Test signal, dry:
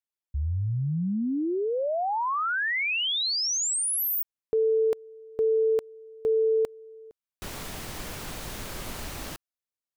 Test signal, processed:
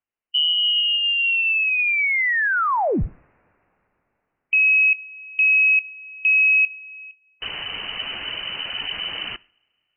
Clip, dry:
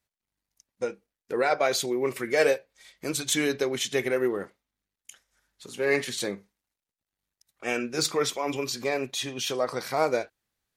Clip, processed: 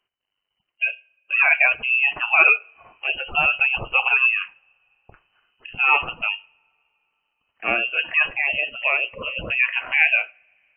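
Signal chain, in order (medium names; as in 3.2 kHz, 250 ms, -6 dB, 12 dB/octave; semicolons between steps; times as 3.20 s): spectral gate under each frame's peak -25 dB strong; two-slope reverb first 0.48 s, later 3.8 s, from -27 dB, DRR 19 dB; frequency inversion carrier 3 kHz; trim +7 dB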